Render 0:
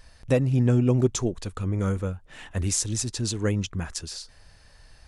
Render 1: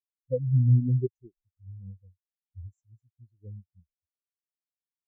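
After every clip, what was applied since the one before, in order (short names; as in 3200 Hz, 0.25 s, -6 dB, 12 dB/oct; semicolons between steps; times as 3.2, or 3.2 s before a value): spectral expander 4:1; gain -4 dB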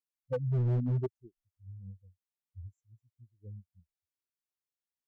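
overloaded stage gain 22.5 dB; gain -3.5 dB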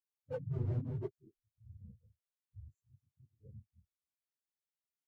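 phase scrambler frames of 50 ms; gain -7 dB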